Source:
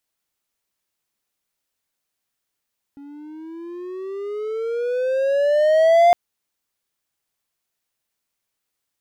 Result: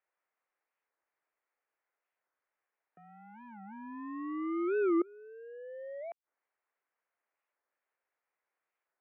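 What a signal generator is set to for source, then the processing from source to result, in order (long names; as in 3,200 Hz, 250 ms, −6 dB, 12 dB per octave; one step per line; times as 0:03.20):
pitch glide with a swell triangle, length 3.16 s, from 279 Hz, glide +16 semitones, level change +28 dB, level −7 dB
gate with flip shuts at −17 dBFS, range −28 dB
single-sideband voice off tune −110 Hz 540–2,300 Hz
wow of a warped record 45 rpm, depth 250 cents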